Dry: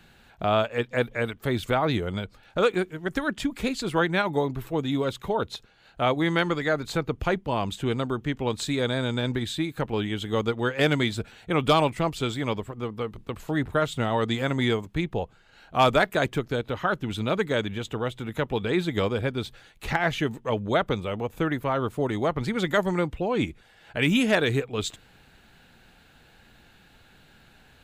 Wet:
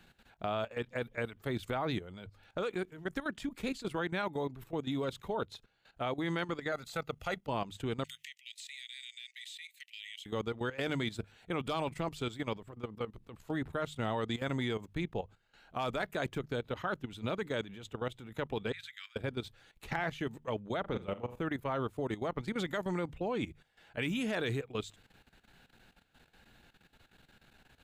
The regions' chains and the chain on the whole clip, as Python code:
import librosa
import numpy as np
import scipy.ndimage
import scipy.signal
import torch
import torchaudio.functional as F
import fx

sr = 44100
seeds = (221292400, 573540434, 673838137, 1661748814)

y = fx.chain(x, sr, fx.tilt_eq(slope=2.0),
    fx.comb(ms=1.5, depth=0.51), at=(6.72, 7.47))
y = fx.chain(y, sr, fx.cheby_ripple_highpass(hz=1900.0, ripple_db=3),
    fx.band_squash(depth_pct=100), at=(8.04, 10.26))
y = fx.chain(y, sr, fx.steep_highpass(hz=1600.0, slope=36),
    fx.high_shelf(hz=3800.0, db=-4.5), at=(18.72, 19.16))
y = fx.chain(y, sr, fx.high_shelf(hz=2600.0, db=-7.5),
    fx.room_flutter(wall_m=7.0, rt60_s=0.39), at=(20.8, 21.42))
y = fx.hum_notches(y, sr, base_hz=50, count=3)
y = fx.level_steps(y, sr, step_db=14)
y = F.gain(torch.from_numpy(y), -5.5).numpy()